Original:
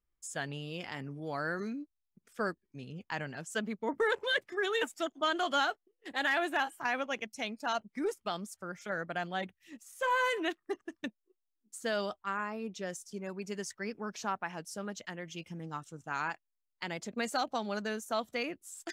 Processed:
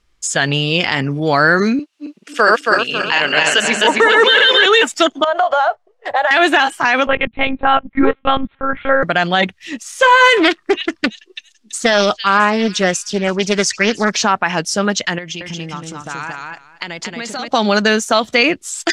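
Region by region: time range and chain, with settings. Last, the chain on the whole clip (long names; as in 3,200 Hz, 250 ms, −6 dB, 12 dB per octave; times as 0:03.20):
0:01.79–0:04.66: feedback delay that plays each chunk backwards 137 ms, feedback 62%, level −0.5 dB + high-pass filter 420 Hz + parametric band 2,800 Hz +10 dB 0.21 octaves
0:05.24–0:06.31: drawn EQ curve 110 Hz 0 dB, 260 Hz −26 dB, 630 Hz +12 dB, 3,000 Hz −13 dB + downward compressor 8 to 1, threshold −35 dBFS
0:07.07–0:09.03: low-pass filter 2,000 Hz + one-pitch LPC vocoder at 8 kHz 270 Hz
0:10.37–0:14.12: echo through a band-pass that steps 333 ms, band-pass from 3,500 Hz, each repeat 0.7 octaves, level −11 dB + highs frequency-modulated by the lows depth 0.3 ms
0:15.18–0:17.48: downward compressor 4 to 1, threshold −50 dBFS + repeating echo 228 ms, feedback 16%, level −3 dB
whole clip: low-pass filter 4,800 Hz 12 dB per octave; high-shelf EQ 2,200 Hz +10 dB; boost into a limiter +23.5 dB; level −1 dB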